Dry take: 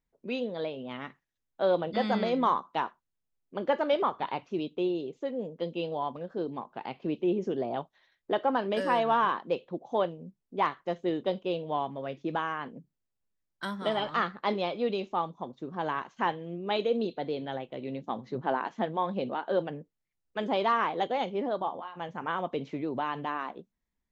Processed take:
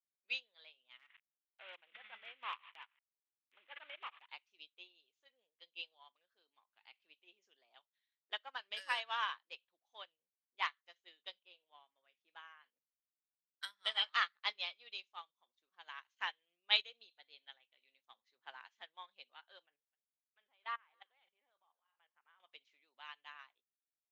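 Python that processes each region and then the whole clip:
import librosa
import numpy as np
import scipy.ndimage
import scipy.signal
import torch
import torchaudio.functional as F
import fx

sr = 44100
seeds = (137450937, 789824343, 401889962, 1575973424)

y = fx.chain(x, sr, fx.cvsd(bps=16000),
    fx.transient(attack_db=-8, sustain_db=-12),
    fx.pre_swell(db_per_s=31.0), at=(0.99, 4.29))
y = fx.chain(y, sr, fx.highpass(hz=130.0, slope=12),
    fx.high_shelf(hz=2500.0, db=-9.5), at=(11.42, 12.64))
y = fx.chain(y, sr, fx.lowpass(hz=2200.0, slope=12),
    fx.level_steps(step_db=13),
    fx.echo_single(ms=256, db=-19.0), at=(19.66, 22.4))
y = scipy.signal.sosfilt(scipy.signal.cheby1(2, 1.0, 2600.0, 'highpass', fs=sr, output='sos'), y)
y = fx.upward_expand(y, sr, threshold_db=-53.0, expansion=2.5)
y = y * 10.0 ** (8.5 / 20.0)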